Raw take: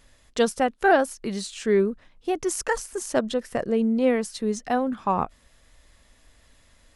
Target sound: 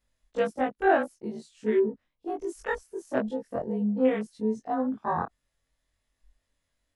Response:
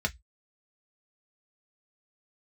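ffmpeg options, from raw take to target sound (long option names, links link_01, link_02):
-af "afftfilt=real='re':imag='-im':win_size=2048:overlap=0.75,afwtdn=0.0158"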